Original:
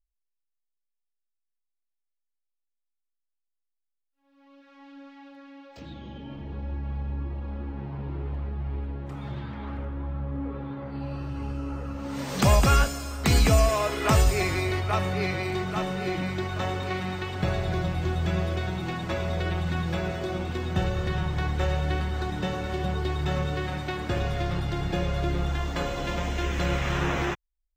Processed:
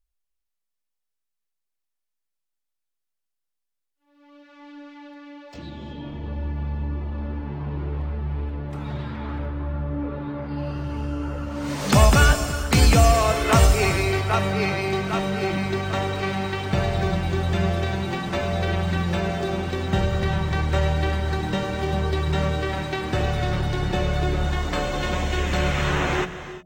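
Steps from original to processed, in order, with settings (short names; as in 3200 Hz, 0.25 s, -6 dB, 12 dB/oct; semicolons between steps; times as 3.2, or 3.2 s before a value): non-linear reverb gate 0.4 s rising, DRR 12 dB; speed mistake 24 fps film run at 25 fps; de-hum 89.52 Hz, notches 8; gain +4.5 dB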